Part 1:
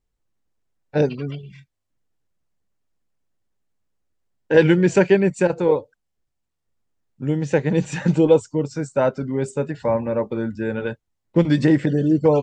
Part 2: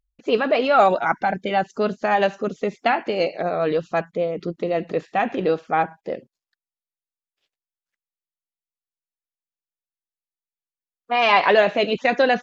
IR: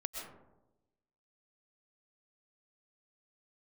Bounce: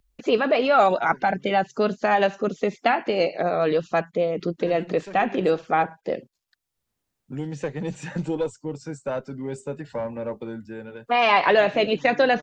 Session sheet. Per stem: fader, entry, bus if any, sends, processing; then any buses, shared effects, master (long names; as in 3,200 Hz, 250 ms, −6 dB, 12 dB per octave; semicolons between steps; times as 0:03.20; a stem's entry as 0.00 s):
−11.5 dB, 0.10 s, no send, one-sided soft clipper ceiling −10 dBFS; automatic ducking −12 dB, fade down 0.70 s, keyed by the second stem
−0.5 dB, 0.00 s, no send, no processing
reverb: not used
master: multiband upward and downward compressor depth 40%